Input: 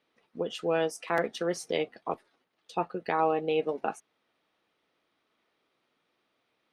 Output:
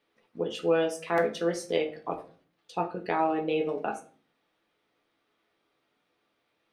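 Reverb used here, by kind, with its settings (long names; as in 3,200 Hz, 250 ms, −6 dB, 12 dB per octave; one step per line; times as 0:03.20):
rectangular room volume 32 cubic metres, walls mixed, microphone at 0.35 metres
level −1 dB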